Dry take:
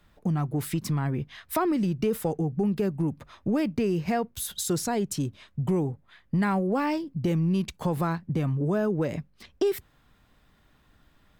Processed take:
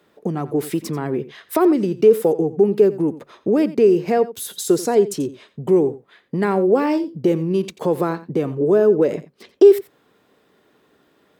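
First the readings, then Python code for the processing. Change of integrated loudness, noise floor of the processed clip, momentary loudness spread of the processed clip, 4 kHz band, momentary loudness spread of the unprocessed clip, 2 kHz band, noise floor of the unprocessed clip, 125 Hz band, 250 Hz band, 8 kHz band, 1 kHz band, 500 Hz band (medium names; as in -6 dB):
+9.5 dB, -60 dBFS, 11 LU, +3.0 dB, 6 LU, +3.5 dB, -63 dBFS, -1.0 dB, +6.5 dB, +3.0 dB, +5.5 dB, +14.5 dB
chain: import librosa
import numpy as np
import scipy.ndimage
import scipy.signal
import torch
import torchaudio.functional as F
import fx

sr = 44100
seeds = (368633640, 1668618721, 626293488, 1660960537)

p1 = scipy.signal.sosfilt(scipy.signal.butter(2, 200.0, 'highpass', fs=sr, output='sos'), x)
p2 = fx.peak_eq(p1, sr, hz=420.0, db=13.5, octaves=0.88)
p3 = p2 + fx.echo_single(p2, sr, ms=88, db=-16.5, dry=0)
y = p3 * 10.0 ** (3.0 / 20.0)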